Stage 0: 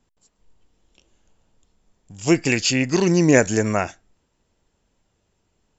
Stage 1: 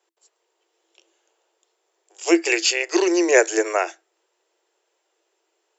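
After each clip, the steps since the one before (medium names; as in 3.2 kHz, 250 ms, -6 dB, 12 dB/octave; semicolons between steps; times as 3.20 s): Chebyshev high-pass 330 Hz, order 10; trim +2 dB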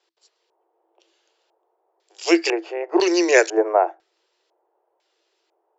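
LFO low-pass square 1 Hz 830–4600 Hz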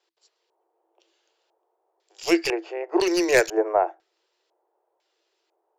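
tracing distortion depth 0.039 ms; trim -3.5 dB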